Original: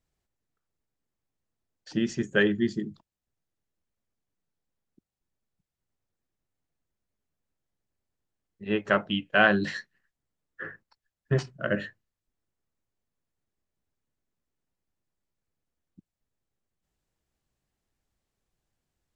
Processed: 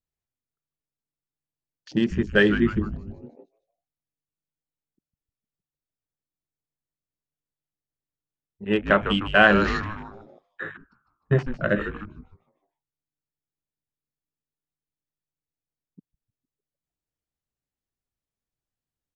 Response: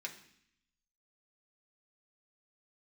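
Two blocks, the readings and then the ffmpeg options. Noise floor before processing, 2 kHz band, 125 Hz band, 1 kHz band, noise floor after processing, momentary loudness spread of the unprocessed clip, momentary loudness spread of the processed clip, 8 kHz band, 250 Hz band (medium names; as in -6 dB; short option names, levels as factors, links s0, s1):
under -85 dBFS, +5.0 dB, +5.5 dB, +5.5 dB, under -85 dBFS, 20 LU, 21 LU, no reading, +5.0 dB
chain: -filter_complex "[0:a]asplit=7[s0][s1][s2][s3][s4][s5][s6];[s1]adelay=152,afreqshift=-150,volume=0.335[s7];[s2]adelay=304,afreqshift=-300,volume=0.174[s8];[s3]adelay=456,afreqshift=-450,volume=0.0902[s9];[s4]adelay=608,afreqshift=-600,volume=0.0473[s10];[s5]adelay=760,afreqshift=-750,volume=0.0245[s11];[s6]adelay=912,afreqshift=-900,volume=0.0127[s12];[s0][s7][s8][s9][s10][s11][s12]amix=inputs=7:normalize=0,afwtdn=0.00708,volume=1.68"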